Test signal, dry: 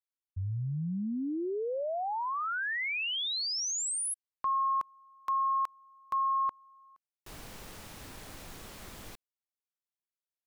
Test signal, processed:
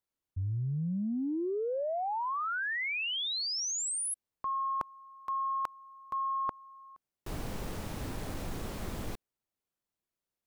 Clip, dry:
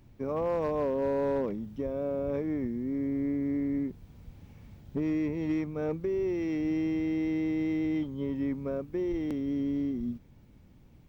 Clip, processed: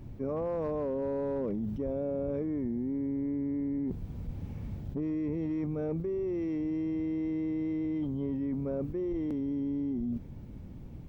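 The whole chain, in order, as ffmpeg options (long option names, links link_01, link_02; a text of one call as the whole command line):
ffmpeg -i in.wav -af "tiltshelf=frequency=930:gain=5.5,areverse,acompressor=threshold=-40dB:ratio=6:attack=11:release=38:knee=1:detection=peak,areverse,volume=6.5dB" out.wav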